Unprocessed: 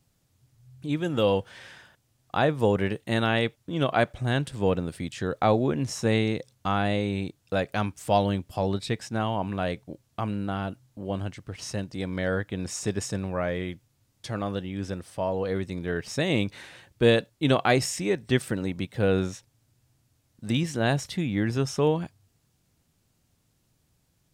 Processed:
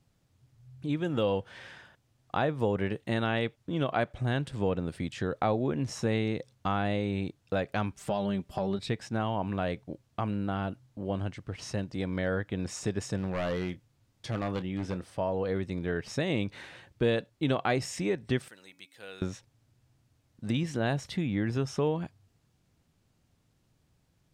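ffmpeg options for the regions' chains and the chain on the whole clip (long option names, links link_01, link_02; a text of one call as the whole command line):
ffmpeg -i in.wav -filter_complex "[0:a]asettb=1/sr,asplit=3[link_01][link_02][link_03];[link_01]atrim=end=7.914[link_04];[link_02]atrim=start=7.91:end=8.79,asetpts=PTS-STARTPTS,afade=type=in:duration=0.004:curve=qsin,afade=type=out:start_time=0.876:duration=0.004:curve=qsin,acompressor=threshold=-25dB:ratio=3:attack=3.2:release=140:knee=1:detection=peak,aecho=1:1:5.1:0.55,atrim=end_sample=38808[link_05];[link_03]atrim=start=8.786[link_06];[link_04][link_05]acrossfade=duration=0.004:curve1=hsin:curve2=qsin[link_07];[link_07][link_06]acrossfade=duration=0.004:curve1=qsin:curve2=hsin,asettb=1/sr,asplit=3[link_08][link_09][link_10];[link_08]atrim=end=13.174[link_11];[link_09]atrim=start=13.17:end=15.15,asetpts=PTS-STARTPTS,afade=type=in:duration=0.004:curve=qsin,afade=type=out:start_time=1.976:duration=0.004:curve=qsin,aeval=exprs='0.0668*(abs(mod(val(0)/0.0668+3,4)-2)-1)':channel_layout=same,asplit=2[link_12][link_13];[link_13]adelay=27,volume=-13.5dB[link_14];[link_12][link_14]amix=inputs=2:normalize=0,atrim=end_sample=87318[link_15];[link_10]atrim=start=15.146[link_16];[link_11][link_15]acrossfade=duration=0.004:curve1=hsin:curve2=qsin[link_17];[link_17][link_16]acrossfade=duration=0.004:curve1=qsin:curve2=hsin,asettb=1/sr,asplit=3[link_18][link_19][link_20];[link_18]atrim=end=18.484[link_21];[link_19]atrim=start=18.48:end=19.22,asetpts=PTS-STARTPTS,afade=type=in:duration=0.004:curve=qsin,afade=type=out:start_time=0.736:duration=0.004:curve=qsin,aderivative,bandreject=frequency=280.9:width_type=h:width=4,bandreject=frequency=561.8:width_type=h:width=4,bandreject=frequency=842.7:width_type=h:width=4,bandreject=frequency=1123.6:width_type=h:width=4,bandreject=frequency=1404.5:width_type=h:width=4,bandreject=frequency=1685.4:width_type=h:width=4,bandreject=frequency=1966.3:width_type=h:width=4,bandreject=frequency=2247.2:width_type=h:width=4,bandreject=frequency=2528.1:width_type=h:width=4[link_22];[link_20]atrim=start=19.216[link_23];[link_21][link_22]acrossfade=duration=0.004:curve1=hsin:curve2=qsin[link_24];[link_24][link_23]acrossfade=duration=0.004:curve1=qsin:curve2=hsin,lowpass=frequency=3700:poles=1,acompressor=threshold=-28dB:ratio=2" out.wav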